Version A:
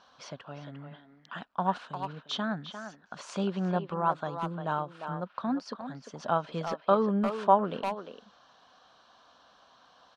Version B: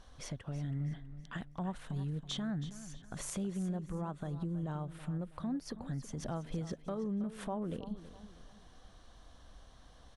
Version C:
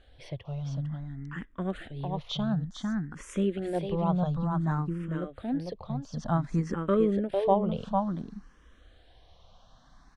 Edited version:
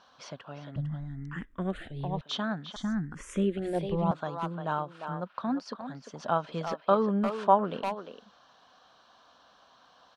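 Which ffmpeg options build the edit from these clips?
-filter_complex "[2:a]asplit=2[s0][s1];[0:a]asplit=3[s2][s3][s4];[s2]atrim=end=0.762[s5];[s0]atrim=start=0.758:end=2.212[s6];[s3]atrim=start=2.208:end=2.762[s7];[s1]atrim=start=2.758:end=4.112[s8];[s4]atrim=start=4.108[s9];[s5][s6]acrossfade=d=0.004:c1=hsin:c2=hsin[s10];[s10][s7]acrossfade=d=0.004:c1=hsin:c2=hsin[s11];[s11][s8]acrossfade=d=0.004:c1=hsin:c2=hsin[s12];[s12][s9]acrossfade=d=0.004:c1=hsin:c2=hsin"

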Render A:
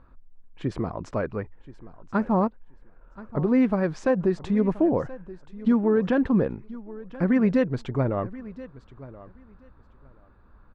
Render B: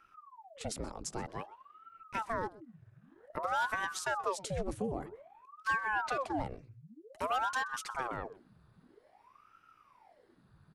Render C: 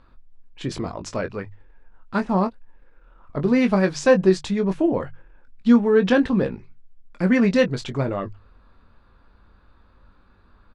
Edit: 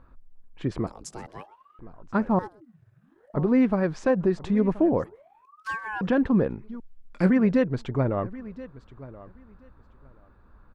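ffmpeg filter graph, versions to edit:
-filter_complex "[1:a]asplit=3[s0][s1][s2];[0:a]asplit=5[s3][s4][s5][s6][s7];[s3]atrim=end=0.872[s8];[s0]atrim=start=0.868:end=1.792[s9];[s4]atrim=start=1.788:end=2.392[s10];[s1]atrim=start=2.388:end=3.342[s11];[s5]atrim=start=3.338:end=5.042[s12];[s2]atrim=start=5.038:end=6.012[s13];[s6]atrim=start=6.008:end=6.802[s14];[2:a]atrim=start=6.798:end=7.302[s15];[s7]atrim=start=7.298[s16];[s8][s9]acrossfade=d=0.004:c1=hsin:c2=hsin[s17];[s17][s10]acrossfade=d=0.004:c1=hsin:c2=hsin[s18];[s18][s11]acrossfade=d=0.004:c1=hsin:c2=hsin[s19];[s19][s12]acrossfade=d=0.004:c1=hsin:c2=hsin[s20];[s20][s13]acrossfade=d=0.004:c1=hsin:c2=hsin[s21];[s21][s14]acrossfade=d=0.004:c1=hsin:c2=hsin[s22];[s22][s15]acrossfade=d=0.004:c1=hsin:c2=hsin[s23];[s23][s16]acrossfade=d=0.004:c1=hsin:c2=hsin"

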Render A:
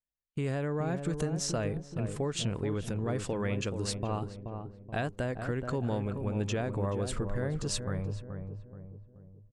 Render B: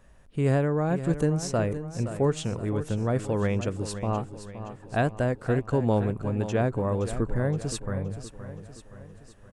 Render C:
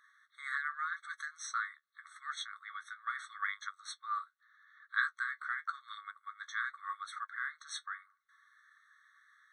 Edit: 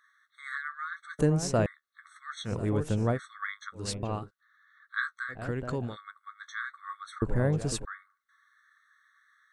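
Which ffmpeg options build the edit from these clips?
-filter_complex "[1:a]asplit=3[s0][s1][s2];[0:a]asplit=2[s3][s4];[2:a]asplit=6[s5][s6][s7][s8][s9][s10];[s5]atrim=end=1.192[s11];[s0]atrim=start=1.188:end=1.662[s12];[s6]atrim=start=1.658:end=2.53[s13];[s1]atrim=start=2.43:end=3.2[s14];[s7]atrim=start=3.1:end=3.88[s15];[s3]atrim=start=3.72:end=4.31[s16];[s8]atrim=start=4.15:end=5.44[s17];[s4]atrim=start=5.28:end=5.97[s18];[s9]atrim=start=5.81:end=7.222[s19];[s2]atrim=start=7.218:end=7.852[s20];[s10]atrim=start=7.848[s21];[s11][s12]acrossfade=d=0.004:c1=hsin:c2=hsin[s22];[s22][s13]acrossfade=d=0.004:c1=hsin:c2=hsin[s23];[s23][s14]acrossfade=d=0.1:c1=tri:c2=tri[s24];[s24][s15]acrossfade=d=0.1:c1=tri:c2=tri[s25];[s25][s16]acrossfade=d=0.16:c1=tri:c2=tri[s26];[s26][s17]acrossfade=d=0.16:c1=tri:c2=tri[s27];[s27][s18]acrossfade=d=0.16:c1=tri:c2=tri[s28];[s28][s19]acrossfade=d=0.16:c1=tri:c2=tri[s29];[s29][s20]acrossfade=d=0.004:c1=hsin:c2=hsin[s30];[s30][s21]acrossfade=d=0.004:c1=hsin:c2=hsin"

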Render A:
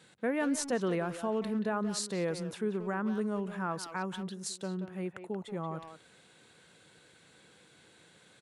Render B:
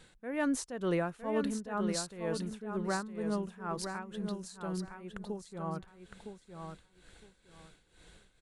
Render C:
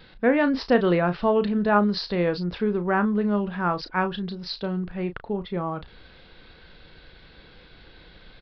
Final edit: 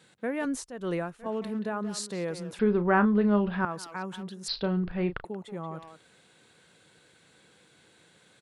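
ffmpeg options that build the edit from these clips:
-filter_complex "[2:a]asplit=2[s0][s1];[0:a]asplit=4[s2][s3][s4][s5];[s2]atrim=end=0.452[s6];[1:a]atrim=start=0.448:end=1.262[s7];[s3]atrim=start=1.258:end=2.592[s8];[s0]atrim=start=2.588:end=3.652[s9];[s4]atrim=start=3.648:end=4.482[s10];[s1]atrim=start=4.478:end=5.252[s11];[s5]atrim=start=5.248[s12];[s6][s7]acrossfade=d=0.004:c1=hsin:c2=hsin[s13];[s13][s8]acrossfade=d=0.004:c1=hsin:c2=hsin[s14];[s14][s9]acrossfade=d=0.004:c1=hsin:c2=hsin[s15];[s15][s10]acrossfade=d=0.004:c1=hsin:c2=hsin[s16];[s16][s11]acrossfade=d=0.004:c1=hsin:c2=hsin[s17];[s17][s12]acrossfade=d=0.004:c1=hsin:c2=hsin"

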